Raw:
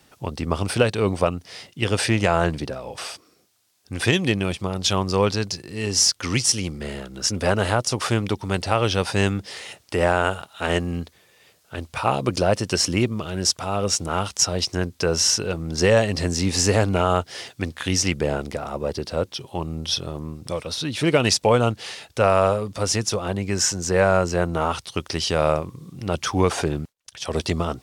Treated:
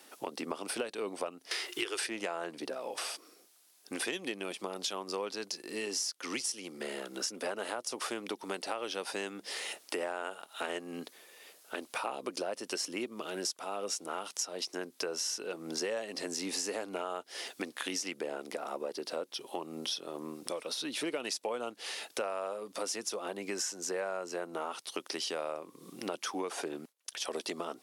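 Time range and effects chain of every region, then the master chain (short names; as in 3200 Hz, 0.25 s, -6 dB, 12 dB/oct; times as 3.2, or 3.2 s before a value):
1.51–2.07 EQ curve 120 Hz 0 dB, 220 Hz -25 dB, 360 Hz +10 dB, 540 Hz -5 dB, 1300 Hz +7 dB + three-band squash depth 70%
whole clip: HPF 270 Hz 24 dB/oct; bell 11000 Hz +7.5 dB 0.44 oct; compressor 5:1, threshold -35 dBFS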